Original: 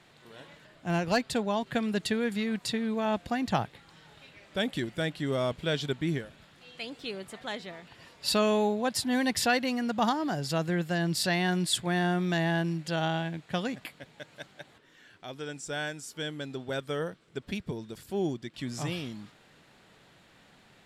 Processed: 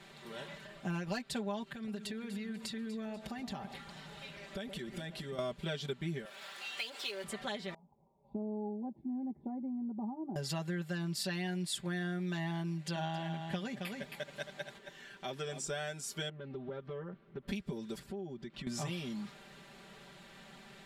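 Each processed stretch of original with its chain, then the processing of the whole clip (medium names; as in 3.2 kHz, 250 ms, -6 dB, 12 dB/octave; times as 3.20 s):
1.72–5.39 s: compression 5:1, threshold -43 dBFS + echo whose repeats swap between lows and highs 122 ms, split 1.1 kHz, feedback 66%, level -9.5 dB
6.25–7.24 s: companding laws mixed up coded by mu + high-pass 640 Hz
7.74–10.36 s: cascade formant filter u + touch-sensitive phaser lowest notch 270 Hz, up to 3 kHz, full sweep at -35 dBFS
12.68–15.67 s: band-stop 1.3 kHz, Q 19 + delay 269 ms -10.5 dB
16.29–17.48 s: compression 4:1, threshold -41 dBFS + tape spacing loss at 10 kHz 43 dB + loudspeaker Doppler distortion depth 0.22 ms
17.99–18.67 s: low-pass 1.7 kHz 6 dB/octave + compression 5:1, threshold -44 dBFS
whole clip: comb 5.1 ms, depth 97%; compression 4:1, threshold -38 dBFS; trim +1 dB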